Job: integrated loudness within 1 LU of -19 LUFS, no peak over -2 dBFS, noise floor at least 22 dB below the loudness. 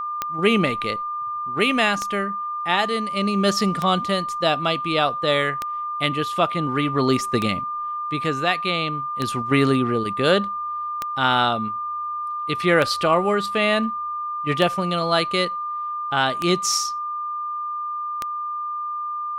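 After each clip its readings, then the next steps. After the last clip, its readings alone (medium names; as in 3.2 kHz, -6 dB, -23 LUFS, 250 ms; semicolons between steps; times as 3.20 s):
clicks found 11; steady tone 1.2 kHz; tone level -25 dBFS; loudness -22.0 LUFS; peak level -4.5 dBFS; loudness target -19.0 LUFS
-> de-click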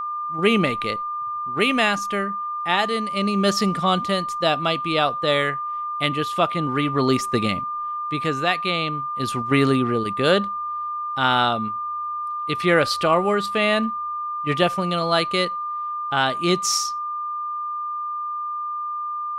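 clicks found 0; steady tone 1.2 kHz; tone level -25 dBFS
-> band-stop 1.2 kHz, Q 30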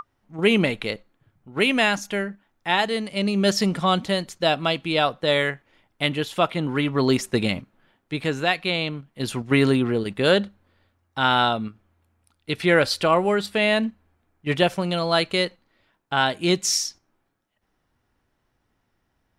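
steady tone not found; loudness -22.5 LUFS; peak level -6.0 dBFS; loudness target -19.0 LUFS
-> trim +3.5 dB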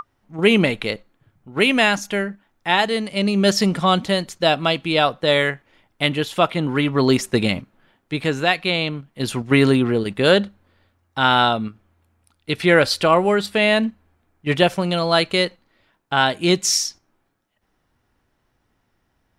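loudness -19.0 LUFS; peak level -2.5 dBFS; noise floor -69 dBFS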